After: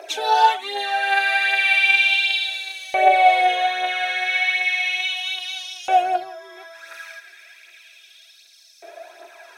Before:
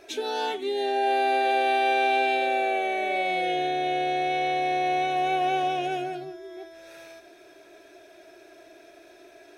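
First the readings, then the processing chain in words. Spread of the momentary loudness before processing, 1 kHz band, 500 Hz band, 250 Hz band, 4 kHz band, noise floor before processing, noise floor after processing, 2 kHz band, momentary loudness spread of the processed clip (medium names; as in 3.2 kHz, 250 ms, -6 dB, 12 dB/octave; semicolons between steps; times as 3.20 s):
10 LU, +4.5 dB, -1.0 dB, no reading, +11.0 dB, -52 dBFS, -50 dBFS, +11.0 dB, 14 LU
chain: phaser 1.3 Hz, delay 2.7 ms, feedback 51%; LFO high-pass saw up 0.34 Hz 620–5200 Hz; trim +6.5 dB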